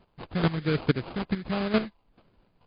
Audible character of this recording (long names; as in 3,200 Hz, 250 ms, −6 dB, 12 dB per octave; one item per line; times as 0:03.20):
phaser sweep stages 12, 1.4 Hz, lowest notch 550–2,500 Hz
chopped level 2.3 Hz, depth 65%, duty 10%
aliases and images of a low sample rate 1,900 Hz, jitter 20%
MP3